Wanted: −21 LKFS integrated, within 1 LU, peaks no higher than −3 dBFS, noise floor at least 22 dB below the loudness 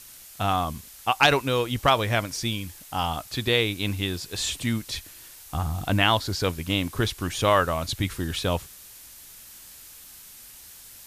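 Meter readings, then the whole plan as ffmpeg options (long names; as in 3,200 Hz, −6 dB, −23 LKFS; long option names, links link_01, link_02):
background noise floor −47 dBFS; target noise floor −48 dBFS; integrated loudness −25.5 LKFS; sample peak −6.0 dBFS; target loudness −21.0 LKFS
→ -af "afftdn=noise_reduction=6:noise_floor=-47"
-af "volume=4.5dB,alimiter=limit=-3dB:level=0:latency=1"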